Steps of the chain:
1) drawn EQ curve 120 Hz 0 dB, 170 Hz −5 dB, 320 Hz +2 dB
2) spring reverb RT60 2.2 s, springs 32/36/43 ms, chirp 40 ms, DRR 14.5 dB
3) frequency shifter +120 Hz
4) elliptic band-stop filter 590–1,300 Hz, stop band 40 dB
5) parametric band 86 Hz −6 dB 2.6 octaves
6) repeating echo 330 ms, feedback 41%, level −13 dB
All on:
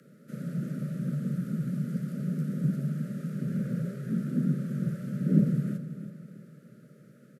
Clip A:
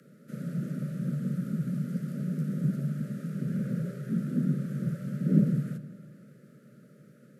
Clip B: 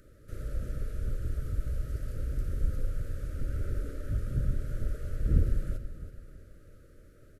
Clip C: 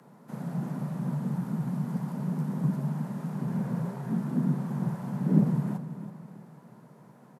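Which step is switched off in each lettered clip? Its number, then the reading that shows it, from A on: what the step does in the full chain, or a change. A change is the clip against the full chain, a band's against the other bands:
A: 6, change in momentary loudness spread −4 LU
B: 3, 250 Hz band −13.5 dB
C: 4, 1 kHz band +12.5 dB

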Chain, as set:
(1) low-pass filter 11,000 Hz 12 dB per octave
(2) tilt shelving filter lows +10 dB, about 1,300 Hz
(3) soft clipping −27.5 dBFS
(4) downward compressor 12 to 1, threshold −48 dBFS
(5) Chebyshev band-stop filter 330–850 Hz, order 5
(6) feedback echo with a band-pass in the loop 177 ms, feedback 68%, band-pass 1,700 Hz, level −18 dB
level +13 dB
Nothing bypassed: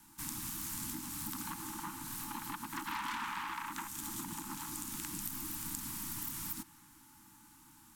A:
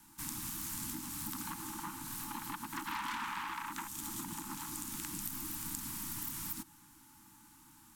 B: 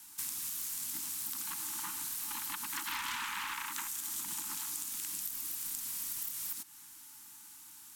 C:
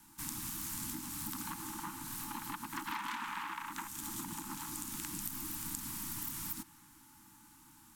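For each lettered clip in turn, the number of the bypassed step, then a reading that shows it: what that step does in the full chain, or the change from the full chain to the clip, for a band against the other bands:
6, echo-to-direct ratio −17.0 dB to none audible
2, 125 Hz band −15.5 dB
3, distortion level −13 dB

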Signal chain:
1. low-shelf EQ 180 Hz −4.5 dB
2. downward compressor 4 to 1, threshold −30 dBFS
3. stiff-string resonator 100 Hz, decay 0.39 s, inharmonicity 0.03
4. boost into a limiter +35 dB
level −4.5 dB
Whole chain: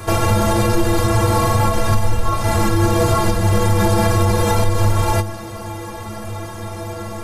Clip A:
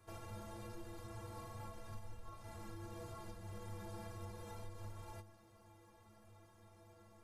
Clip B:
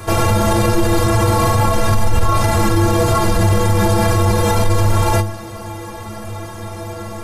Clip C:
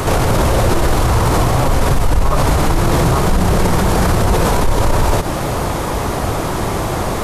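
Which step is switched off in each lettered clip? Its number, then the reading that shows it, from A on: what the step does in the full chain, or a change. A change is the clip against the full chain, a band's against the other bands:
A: 4, change in crest factor +3.5 dB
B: 2, change in crest factor −1.5 dB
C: 3, change in crest factor −2.5 dB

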